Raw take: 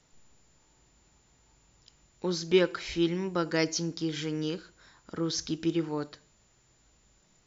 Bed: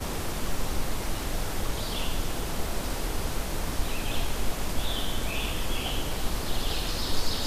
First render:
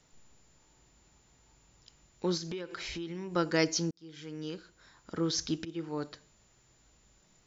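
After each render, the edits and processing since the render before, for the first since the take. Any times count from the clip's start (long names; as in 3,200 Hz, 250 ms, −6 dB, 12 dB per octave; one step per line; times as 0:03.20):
0:02.37–0:03.36: downward compressor 10 to 1, threshold −35 dBFS
0:03.91–0:05.15: fade in linear
0:05.65–0:06.12: fade in, from −18.5 dB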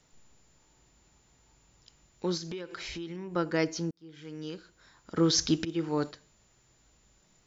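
0:03.16–0:04.25: parametric band 5,800 Hz −7.5 dB 1.8 octaves
0:05.17–0:06.11: clip gain +6.5 dB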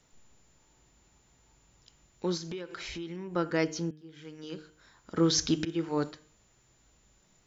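parametric band 4,800 Hz −2.5 dB 0.38 octaves
hum removal 153.5 Hz, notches 21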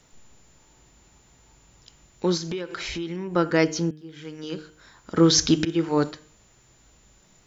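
level +8 dB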